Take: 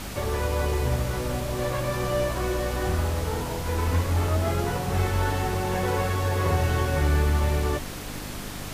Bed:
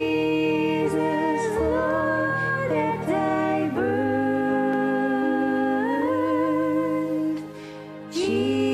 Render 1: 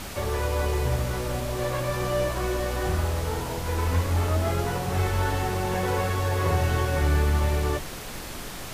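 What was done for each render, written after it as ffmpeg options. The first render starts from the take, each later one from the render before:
-af "bandreject=f=50:t=h:w=4,bandreject=f=100:t=h:w=4,bandreject=f=150:t=h:w=4,bandreject=f=200:t=h:w=4,bandreject=f=250:t=h:w=4,bandreject=f=300:t=h:w=4,bandreject=f=350:t=h:w=4,bandreject=f=400:t=h:w=4,bandreject=f=450:t=h:w=4,bandreject=f=500:t=h:w=4"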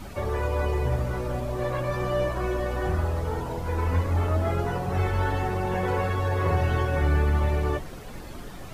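-af "afftdn=nr=12:nf=-37"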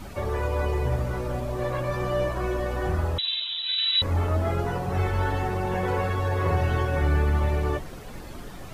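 -filter_complex "[0:a]asettb=1/sr,asplit=3[a][b][c];[a]atrim=end=3.184[d];[b]atrim=start=3.18:end=4.02,asetpts=PTS-STARTPTS,afade=t=in:d=0.004:c=qsin,afade=t=out:st=0.836:d=0.004:c=qsin,lowpass=f=3.4k:t=q:w=0.5098,lowpass=f=3.4k:t=q:w=0.6013,lowpass=f=3.4k:t=q:w=0.9,lowpass=f=3.4k:t=q:w=2.563,afreqshift=-4000[e];[c]atrim=start=4.016[f];[d][e]acrossfade=d=0.004:c1=hsin:c2=qsin[g];[g][f]acrossfade=d=0.004:c1=qsin:c2=hsin"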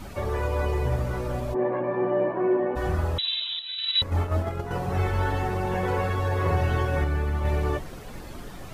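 -filter_complex "[0:a]asplit=3[a][b][c];[a]afade=t=out:st=1.53:d=0.02[d];[b]highpass=f=160:w=0.5412,highpass=f=160:w=1.3066,equalizer=f=260:t=q:w=4:g=6,equalizer=f=380:t=q:w=4:g=8,equalizer=f=850:t=q:w=4:g=7,equalizer=f=1.3k:t=q:w=4:g=-8,lowpass=f=2k:w=0.5412,lowpass=f=2k:w=1.3066,afade=t=in:st=1.53:d=0.02,afade=t=out:st=2.75:d=0.02[e];[c]afade=t=in:st=2.75:d=0.02[f];[d][e][f]amix=inputs=3:normalize=0,asettb=1/sr,asplit=3[g][h][i];[g]atrim=end=3.594[j];[h]atrim=start=3.59:end=4.71,asetpts=PTS-STARTPTS,afade=t=in:d=0.004:c=qsin,afade=t=out:st=1.116:d=0.004:c=qsin,agate=range=-7dB:threshold=-25dB:ratio=16:release=100:detection=peak[k];[i]atrim=start=4.706[l];[j][k]acrossfade=d=0.004:c1=hsin:c2=qsin[m];[m][l]acrossfade=d=0.004:c1=qsin:c2=hsin,asplit=3[n][o][p];[n]atrim=end=7.042[q];[o]atrim=start=7.038:end=7.452,asetpts=PTS-STARTPTS,volume=-4dB[r];[p]atrim=start=7.448[s];[q][r]acrossfade=d=0.004:c1=hsin:c2=hsin[t];[t][s]acrossfade=d=0.004:c1=hsin:c2=hsin"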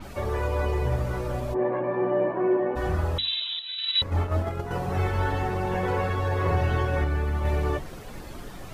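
-af "bandreject=f=50:t=h:w=6,bandreject=f=100:t=h:w=6,bandreject=f=150:t=h:w=6,bandreject=f=200:t=h:w=6,bandreject=f=250:t=h:w=6,adynamicequalizer=threshold=0.00562:dfrequency=6200:dqfactor=0.7:tfrequency=6200:tqfactor=0.7:attack=5:release=100:ratio=0.375:range=2.5:mode=cutabove:tftype=highshelf"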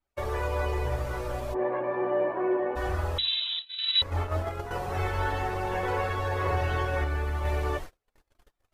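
-af "agate=range=-43dB:threshold=-33dB:ratio=16:detection=peak,equalizer=f=170:w=0.9:g=-12.5"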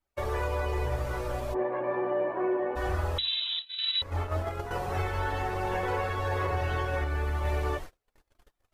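-af "alimiter=limit=-20dB:level=0:latency=1:release=248"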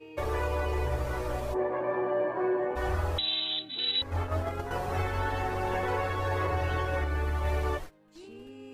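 -filter_complex "[1:a]volume=-24dB[a];[0:a][a]amix=inputs=2:normalize=0"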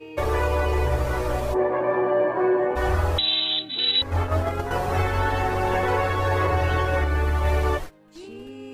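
-af "volume=7.5dB"

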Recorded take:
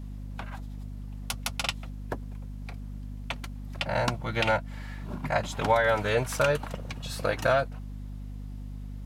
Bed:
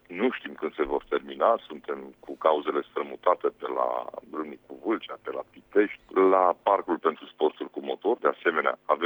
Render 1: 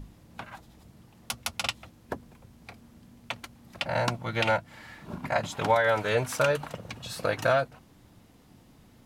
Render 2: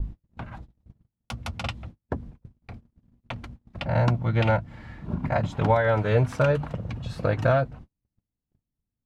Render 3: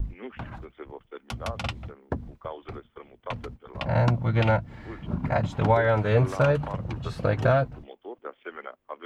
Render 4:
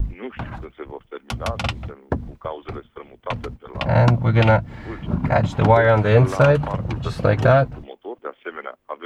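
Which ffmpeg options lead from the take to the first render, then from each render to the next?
-af "bandreject=f=50:t=h:w=6,bandreject=f=100:t=h:w=6,bandreject=f=150:t=h:w=6,bandreject=f=200:t=h:w=6,bandreject=f=250:t=h:w=6"
-af "agate=range=-41dB:threshold=-49dB:ratio=16:detection=peak,aemphasis=mode=reproduction:type=riaa"
-filter_complex "[1:a]volume=-15dB[a];[0:a][a]amix=inputs=2:normalize=0"
-af "volume=7dB,alimiter=limit=-2dB:level=0:latency=1"

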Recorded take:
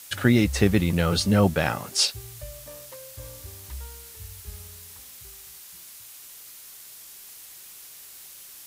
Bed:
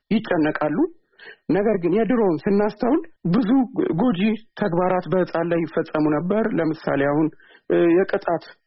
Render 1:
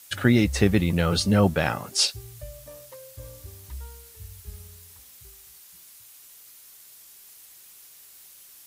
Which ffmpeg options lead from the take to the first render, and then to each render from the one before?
-af "afftdn=nr=6:nf=-45"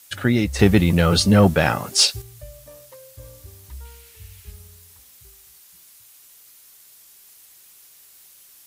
-filter_complex "[0:a]asettb=1/sr,asplit=3[a][b][c];[a]atrim=end=0.594[d];[b]atrim=start=0.59:end=2.22,asetpts=PTS-STARTPTS,afade=t=in:d=0.004:c=qsin,afade=t=out:st=1.626:d=0.004:c=qsin,acontrast=66[e];[c]atrim=start=2.216[f];[d][e]acrossfade=d=0.004:c1=hsin:c2=qsin[g];[g][f]acrossfade=d=0.004:c1=qsin:c2=hsin,asettb=1/sr,asplit=3[h][i][j];[h]atrim=end=3.854[k];[i]atrim=start=3.85:end=4.52,asetpts=PTS-STARTPTS,afade=t=in:d=0.004:c=qsin,afade=t=out:st=0.666:d=0.004:c=qsin,equalizer=f=2.5k:w=1.2:g=8[l];[j]atrim=start=4.516[m];[k][l]acrossfade=d=0.004:c1=hsin:c2=qsin[n];[n][m]acrossfade=d=0.004:c1=qsin:c2=hsin"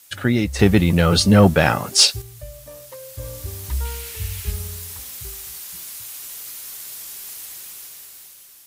-af "dynaudnorm=f=270:g=9:m=14.5dB"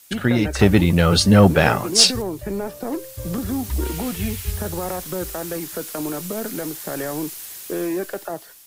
-filter_complex "[1:a]volume=-8dB[a];[0:a][a]amix=inputs=2:normalize=0"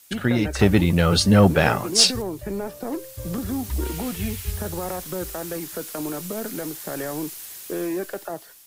-af "volume=-2.5dB"

